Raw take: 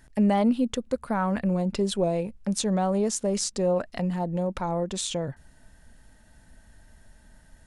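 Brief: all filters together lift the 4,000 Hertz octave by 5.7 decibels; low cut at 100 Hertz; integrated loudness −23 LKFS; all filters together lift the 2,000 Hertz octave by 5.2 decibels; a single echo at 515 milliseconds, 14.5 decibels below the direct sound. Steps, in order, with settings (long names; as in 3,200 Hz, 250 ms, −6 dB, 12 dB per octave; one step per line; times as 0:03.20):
high-pass filter 100 Hz
parametric band 2,000 Hz +5.5 dB
parametric band 4,000 Hz +5.5 dB
single-tap delay 515 ms −14.5 dB
level +3 dB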